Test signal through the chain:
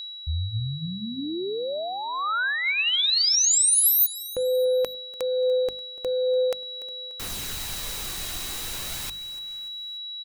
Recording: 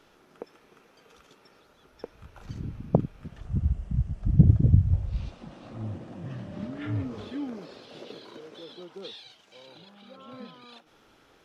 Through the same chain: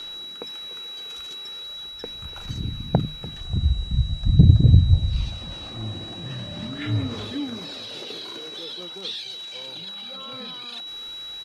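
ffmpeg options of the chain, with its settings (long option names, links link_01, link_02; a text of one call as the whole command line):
ffmpeg -i in.wav -af "highshelf=frequency=2900:gain=8.5,acontrast=53,equalizer=frequency=440:width=0.47:gain=-4.5,aecho=1:1:292|584|876:0.106|0.0477|0.0214,aphaser=in_gain=1:out_gain=1:delay=2.8:decay=0.26:speed=0.42:type=sinusoidal,bandreject=frequency=50:width_type=h:width=6,bandreject=frequency=100:width_type=h:width=6,bandreject=frequency=150:width_type=h:width=6,bandreject=frequency=200:width_type=h:width=6,bandreject=frequency=250:width_type=h:width=6,aeval=exprs='val(0)+0.0141*sin(2*PI*3900*n/s)':channel_layout=same,areverse,acompressor=mode=upward:threshold=-31dB:ratio=2.5,areverse" out.wav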